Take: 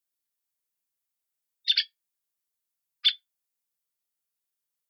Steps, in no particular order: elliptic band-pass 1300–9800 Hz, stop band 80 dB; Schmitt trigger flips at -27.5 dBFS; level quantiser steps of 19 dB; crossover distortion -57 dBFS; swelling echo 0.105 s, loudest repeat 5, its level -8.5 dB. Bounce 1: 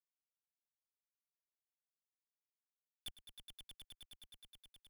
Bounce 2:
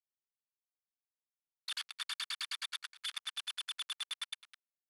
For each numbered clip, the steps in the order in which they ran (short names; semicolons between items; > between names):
elliptic band-pass > level quantiser > Schmitt trigger > crossover distortion > swelling echo; swelling echo > Schmitt trigger > crossover distortion > elliptic band-pass > level quantiser